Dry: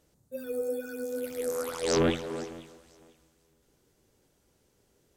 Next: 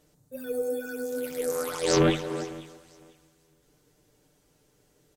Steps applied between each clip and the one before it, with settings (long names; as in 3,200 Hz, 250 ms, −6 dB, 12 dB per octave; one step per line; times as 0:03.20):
comb filter 6.7 ms, depth 53%
level +2.5 dB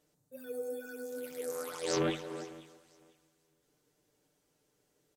low-shelf EQ 110 Hz −11.5 dB
level −8.5 dB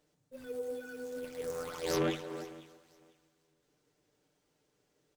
windowed peak hold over 3 samples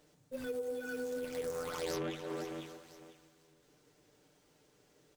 downward compressor 6 to 1, threshold −44 dBFS, peak gain reduction 16 dB
level +8 dB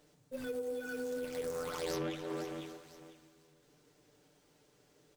convolution reverb RT60 1.4 s, pre-delay 7 ms, DRR 14 dB